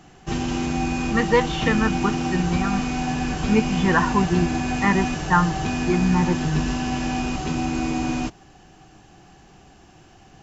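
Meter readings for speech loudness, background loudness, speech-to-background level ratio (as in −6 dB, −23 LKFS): −23.0 LKFS, −25.5 LKFS, 2.5 dB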